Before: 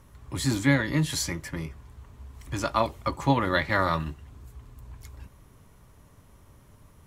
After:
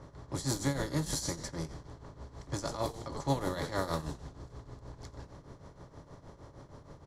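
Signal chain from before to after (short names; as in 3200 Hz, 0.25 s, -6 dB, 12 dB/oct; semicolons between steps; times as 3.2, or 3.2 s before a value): per-bin compression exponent 0.6; EQ curve 150 Hz 0 dB, 220 Hz -6 dB, 420 Hz +3 dB, 2500 Hz -11 dB, 5200 Hz +5 dB; frequency-shifting echo 87 ms, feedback 48%, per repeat -110 Hz, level -10.5 dB; tremolo triangle 6.4 Hz, depth 80%; low-pass opened by the level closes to 2300 Hz, open at -22.5 dBFS; gain -6.5 dB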